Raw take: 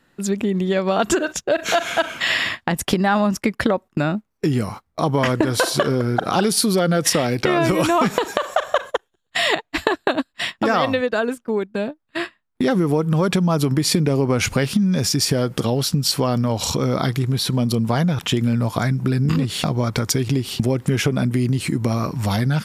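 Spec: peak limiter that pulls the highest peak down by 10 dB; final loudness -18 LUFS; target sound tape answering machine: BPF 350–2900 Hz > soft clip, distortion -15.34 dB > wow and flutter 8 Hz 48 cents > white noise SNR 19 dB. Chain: limiter -13 dBFS; BPF 350–2900 Hz; soft clip -19 dBFS; wow and flutter 8 Hz 48 cents; white noise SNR 19 dB; gain +11 dB

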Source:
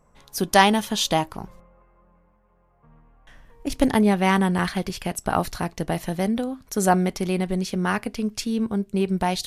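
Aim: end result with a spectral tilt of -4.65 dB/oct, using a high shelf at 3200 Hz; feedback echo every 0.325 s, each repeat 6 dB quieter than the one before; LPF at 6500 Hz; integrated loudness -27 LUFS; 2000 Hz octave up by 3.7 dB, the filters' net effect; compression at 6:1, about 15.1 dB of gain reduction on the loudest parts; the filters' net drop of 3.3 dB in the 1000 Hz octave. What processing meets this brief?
LPF 6500 Hz; bell 1000 Hz -5.5 dB; bell 2000 Hz +8.5 dB; high shelf 3200 Hz -8 dB; compressor 6:1, threshold -28 dBFS; feedback echo 0.325 s, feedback 50%, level -6 dB; gain +5 dB

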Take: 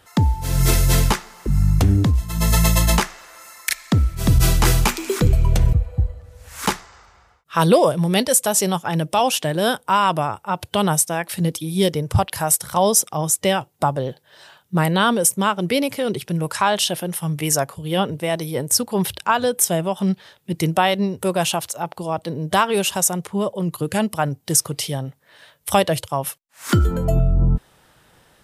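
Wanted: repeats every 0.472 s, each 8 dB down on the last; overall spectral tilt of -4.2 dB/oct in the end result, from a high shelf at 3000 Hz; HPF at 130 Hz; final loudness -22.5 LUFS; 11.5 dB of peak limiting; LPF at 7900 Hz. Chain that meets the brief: HPF 130 Hz; LPF 7900 Hz; high shelf 3000 Hz +4 dB; limiter -12.5 dBFS; feedback echo 0.472 s, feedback 40%, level -8 dB; gain +1.5 dB

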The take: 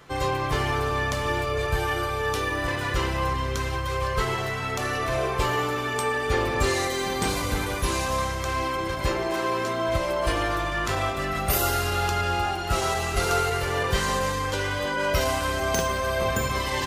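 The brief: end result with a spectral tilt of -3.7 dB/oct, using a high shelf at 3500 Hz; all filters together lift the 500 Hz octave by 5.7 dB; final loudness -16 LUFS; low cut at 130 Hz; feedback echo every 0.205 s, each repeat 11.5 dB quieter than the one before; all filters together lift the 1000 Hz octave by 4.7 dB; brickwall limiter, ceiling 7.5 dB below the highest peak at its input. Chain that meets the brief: HPF 130 Hz; bell 500 Hz +6 dB; bell 1000 Hz +3.5 dB; high shelf 3500 Hz +6.5 dB; limiter -12.5 dBFS; feedback echo 0.205 s, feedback 27%, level -11.5 dB; gain +6 dB

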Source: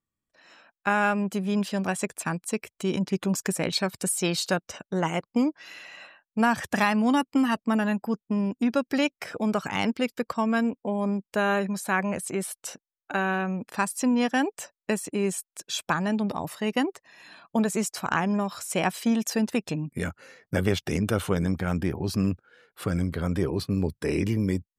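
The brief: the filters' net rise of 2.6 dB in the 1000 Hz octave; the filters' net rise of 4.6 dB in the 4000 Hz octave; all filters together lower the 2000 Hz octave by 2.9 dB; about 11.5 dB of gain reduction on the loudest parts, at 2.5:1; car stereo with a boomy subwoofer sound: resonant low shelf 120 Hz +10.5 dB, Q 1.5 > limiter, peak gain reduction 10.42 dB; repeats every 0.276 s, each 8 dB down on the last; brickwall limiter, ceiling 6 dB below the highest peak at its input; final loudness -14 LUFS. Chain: bell 1000 Hz +5 dB; bell 2000 Hz -8 dB; bell 4000 Hz +8 dB; compressor 2.5:1, threshold -35 dBFS; limiter -25 dBFS; resonant low shelf 120 Hz +10.5 dB, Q 1.5; feedback echo 0.276 s, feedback 40%, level -8 dB; gain +26.5 dB; limiter -5 dBFS

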